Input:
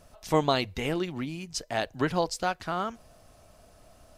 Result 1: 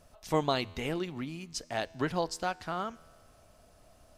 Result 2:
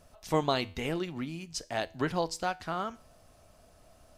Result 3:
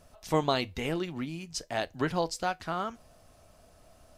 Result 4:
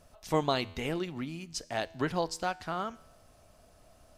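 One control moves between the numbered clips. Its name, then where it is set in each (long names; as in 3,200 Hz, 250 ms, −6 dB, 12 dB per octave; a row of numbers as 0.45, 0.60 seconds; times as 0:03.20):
tuned comb filter, decay: 2.1, 0.41, 0.17, 0.94 seconds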